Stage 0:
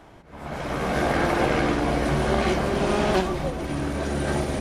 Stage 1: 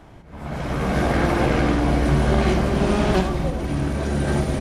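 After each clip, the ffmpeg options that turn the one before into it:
-af "bass=f=250:g=7,treble=f=4000:g=0,aecho=1:1:79:0.299"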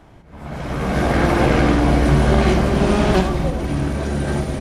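-af "dynaudnorm=f=300:g=7:m=3.76,volume=0.891"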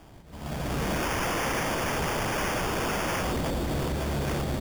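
-af "aresample=11025,aeval=exprs='0.106*(abs(mod(val(0)/0.106+3,4)-2)-1)':c=same,aresample=44100,acrusher=samples=11:mix=1:aa=0.000001,volume=0.631"

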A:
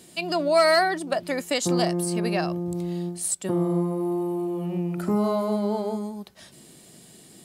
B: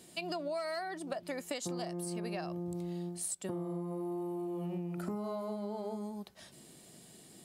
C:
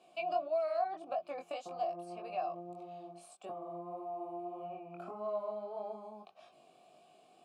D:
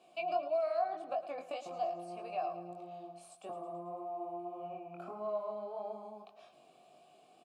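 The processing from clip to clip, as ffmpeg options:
-af "equalizer=f=720:w=1.5:g=2,acompressor=threshold=0.0398:ratio=10,volume=0.473"
-filter_complex "[0:a]asplit=3[s0][s1][s2];[s0]bandpass=f=730:t=q:w=8,volume=1[s3];[s1]bandpass=f=1090:t=q:w=8,volume=0.501[s4];[s2]bandpass=f=2440:t=q:w=8,volume=0.355[s5];[s3][s4][s5]amix=inputs=3:normalize=0,flanger=delay=18.5:depth=4.9:speed=1.7,volume=4.22"
-af "aecho=1:1:110|220|330|440|550|660:0.2|0.118|0.0695|0.041|0.0242|0.0143"

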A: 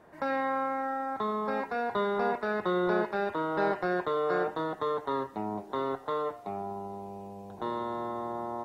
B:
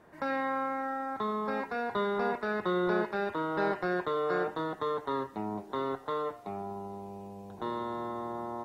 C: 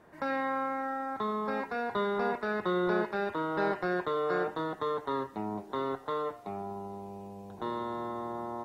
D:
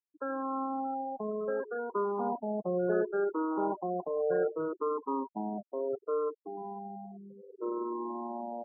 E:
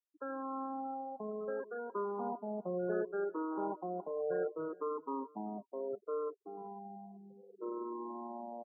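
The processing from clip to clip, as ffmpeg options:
-af "equalizer=f=680:w=1.3:g=-3.5"
-af anull
-af "afftfilt=real='re*pow(10,12/40*sin(2*PI*(0.55*log(max(b,1)*sr/1024/100)/log(2)-(-0.67)*(pts-256)/sr)))':imag='im*pow(10,12/40*sin(2*PI*(0.55*log(max(b,1)*sr/1024/100)/log(2)-(-0.67)*(pts-256)/sr)))':win_size=1024:overlap=0.75,bandpass=f=420:t=q:w=0.77:csg=0,afftfilt=real='re*gte(hypot(re,im),0.0316)':imag='im*gte(hypot(re,im),0.0316)':win_size=1024:overlap=0.75"
-af "aecho=1:1:383:0.0668,volume=0.501"

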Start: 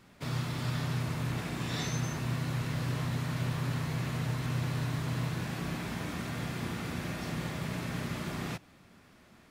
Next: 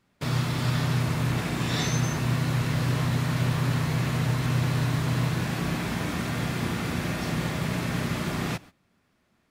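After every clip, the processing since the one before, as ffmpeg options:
-af "agate=range=0.126:threshold=0.00282:ratio=16:detection=peak,volume=2.37"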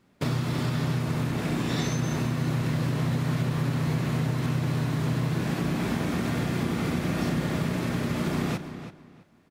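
-filter_complex "[0:a]equalizer=f=300:t=o:w=2.3:g=6.5,acompressor=threshold=0.0501:ratio=6,asplit=2[s0][s1];[s1]adelay=330,lowpass=f=4600:p=1,volume=0.282,asplit=2[s2][s3];[s3]adelay=330,lowpass=f=4600:p=1,volume=0.22,asplit=2[s4][s5];[s5]adelay=330,lowpass=f=4600:p=1,volume=0.22[s6];[s2][s4][s6]amix=inputs=3:normalize=0[s7];[s0][s7]amix=inputs=2:normalize=0,volume=1.26"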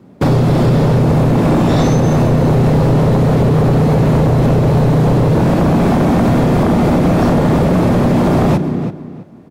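-filter_complex "[0:a]lowshelf=f=75:g=7,acrossover=split=100|850|6800[s0][s1][s2][s3];[s1]aeval=exprs='0.168*sin(PI/2*3.55*val(0)/0.168)':c=same[s4];[s0][s4][s2][s3]amix=inputs=4:normalize=0,volume=2.24"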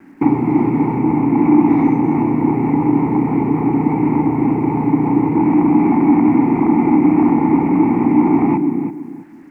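-filter_complex "[0:a]asplit=3[s0][s1][s2];[s0]bandpass=f=300:t=q:w=8,volume=1[s3];[s1]bandpass=f=870:t=q:w=8,volume=0.501[s4];[s2]bandpass=f=2240:t=q:w=8,volume=0.355[s5];[s3][s4][s5]amix=inputs=3:normalize=0,acrusher=bits=9:mix=0:aa=0.000001,highshelf=f=2600:t=q:w=3:g=-10.5,volume=2.82"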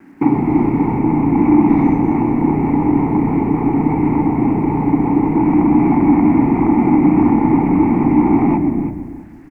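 -filter_complex "[0:a]asplit=6[s0][s1][s2][s3][s4][s5];[s1]adelay=121,afreqshift=-87,volume=0.266[s6];[s2]adelay=242,afreqshift=-174,volume=0.123[s7];[s3]adelay=363,afreqshift=-261,volume=0.0562[s8];[s4]adelay=484,afreqshift=-348,volume=0.026[s9];[s5]adelay=605,afreqshift=-435,volume=0.0119[s10];[s0][s6][s7][s8][s9][s10]amix=inputs=6:normalize=0"

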